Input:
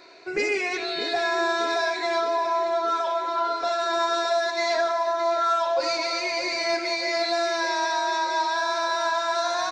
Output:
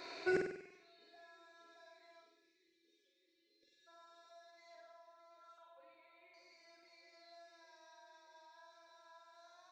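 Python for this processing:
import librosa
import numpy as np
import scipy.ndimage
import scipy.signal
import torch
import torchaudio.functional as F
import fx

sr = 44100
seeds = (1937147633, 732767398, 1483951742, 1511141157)

p1 = fx.gate_flip(x, sr, shuts_db=-21.0, range_db=-38)
p2 = fx.spec_erase(p1, sr, start_s=2.22, length_s=1.65, low_hz=580.0, high_hz=1700.0)
p3 = fx.steep_lowpass(p2, sr, hz=3900.0, slope=96, at=(5.58, 6.34))
p4 = p3 + fx.room_flutter(p3, sr, wall_m=8.3, rt60_s=0.66, dry=0)
y = p4 * 10.0 ** (-1.5 / 20.0)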